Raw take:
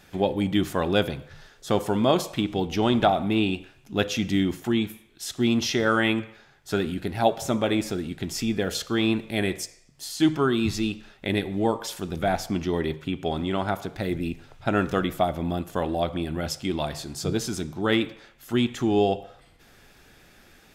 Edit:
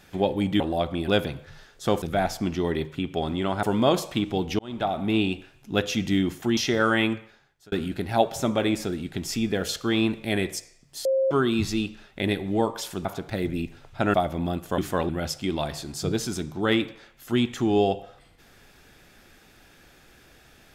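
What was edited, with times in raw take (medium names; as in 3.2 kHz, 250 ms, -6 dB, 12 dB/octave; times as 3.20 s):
0.60–0.91 s: swap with 15.82–16.30 s
2.81–3.36 s: fade in
4.79–5.63 s: delete
6.17–6.78 s: fade out
10.11–10.37 s: bleep 533 Hz -19 dBFS
12.11–13.72 s: move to 1.85 s
14.81–15.18 s: delete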